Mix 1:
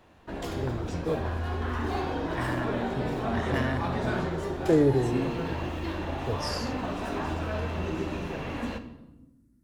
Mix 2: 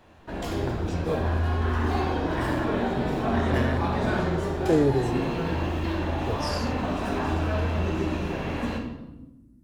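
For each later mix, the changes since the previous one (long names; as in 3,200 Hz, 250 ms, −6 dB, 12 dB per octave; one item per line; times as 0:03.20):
background: send +9.0 dB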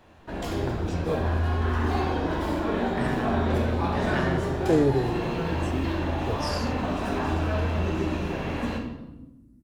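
second voice: entry +0.60 s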